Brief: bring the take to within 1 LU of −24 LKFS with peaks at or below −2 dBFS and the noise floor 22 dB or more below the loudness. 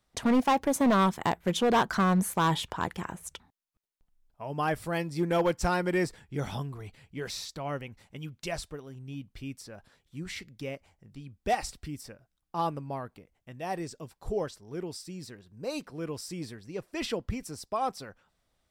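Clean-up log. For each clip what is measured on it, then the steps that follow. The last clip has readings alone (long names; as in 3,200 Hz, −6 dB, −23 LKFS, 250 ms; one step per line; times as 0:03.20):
share of clipped samples 1.3%; peaks flattened at −19.5 dBFS; integrated loudness −31.0 LKFS; sample peak −19.5 dBFS; target loudness −24.0 LKFS
→ clipped peaks rebuilt −19.5 dBFS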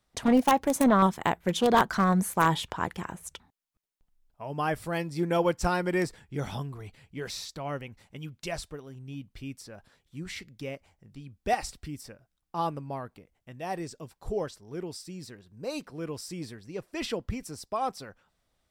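share of clipped samples 0.0%; integrated loudness −29.5 LKFS; sample peak −10.5 dBFS; target loudness −24.0 LKFS
→ level +5.5 dB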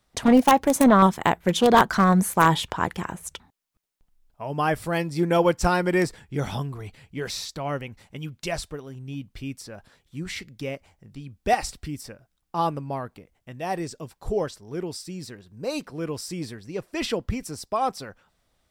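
integrated loudness −24.0 LKFS; sample peak −5.0 dBFS; background noise floor −73 dBFS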